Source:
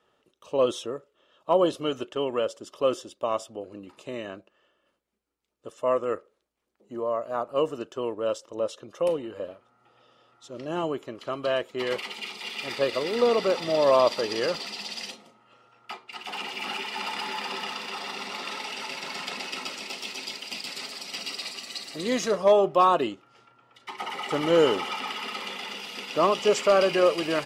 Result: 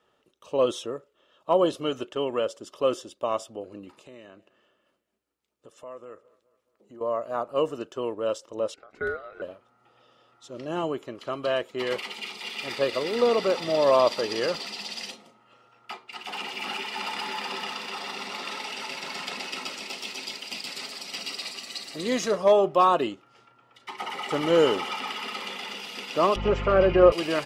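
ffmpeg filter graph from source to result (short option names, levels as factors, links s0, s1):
-filter_complex "[0:a]asettb=1/sr,asplit=3[s0][s1][s2];[s0]atrim=end=3.944[s3];[s1]atrim=start=3.94:end=7.01,asetpts=PTS-STARTPTS,afade=t=in:d=0.004:c=qsin,afade=t=out:st=3.066:d=0.004:c=qsin,highpass=63,acompressor=threshold=0.00251:ratio=2:attack=3.2:release=140:knee=1:detection=peak,aecho=1:1:209|418|627|836:0.0794|0.0405|0.0207|0.0105,atrim=end_sample=135387[s4];[s2]atrim=start=7.006[s5];[s3][s4]acrossfade=d=0.004:c1=hsin:c2=qsin[s6];[s6][s5]acrossfade=d=0.004:c1=qsin:c2=hsin,asettb=1/sr,asplit=3[s7][s8][s9];[s7]atrim=end=8.744[s10];[s8]atrim=start=8.74:end=9.42,asetpts=PTS-STARTPTS,afade=t=in:d=0.004:c=qsin,afade=t=out:st=0.676:d=0.004:c=qsin,lowshelf=f=150:g=-10,aeval=exprs='val(0)*sin(2*PI*940*n/s)':c=same,lowpass=f=1500:p=1[s11];[s9]atrim=start=9.416[s12];[s10][s11]acrossfade=d=0.004:c1=hsin:c2=qsin[s13];[s13][s12]acrossfade=d=0.004:c1=qsin:c2=hsin,asettb=1/sr,asplit=3[s14][s15][s16];[s14]atrim=end=26.364[s17];[s15]atrim=start=26.36:end=27.12,asetpts=PTS-STARTPTS,afade=t=in:d=0.004:c=qsin,afade=t=out:st=0.756:d=0.004:c=qsin,lowpass=1800,aecho=1:1:5.7:0.8,atrim=end_sample=33516,aeval=exprs='val(0)+0.0316*(sin(2*PI*50*n/s)+sin(2*PI*2*50*n/s)/2+sin(2*PI*3*50*n/s)/3+sin(2*PI*4*50*n/s)/4+sin(2*PI*5*50*n/s)/5)':c=same[s18];[s16]atrim=start=27.116[s19];[s17][s18]acrossfade=d=0.004:c1=hsin:c2=qsin[s20];[s20][s19]acrossfade=d=0.004:c1=qsin:c2=hsin"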